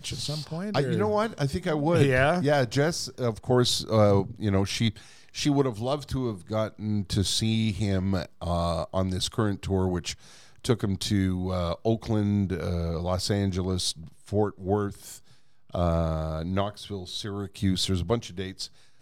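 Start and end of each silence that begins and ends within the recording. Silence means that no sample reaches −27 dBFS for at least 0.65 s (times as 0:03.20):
0:14.88–0:15.75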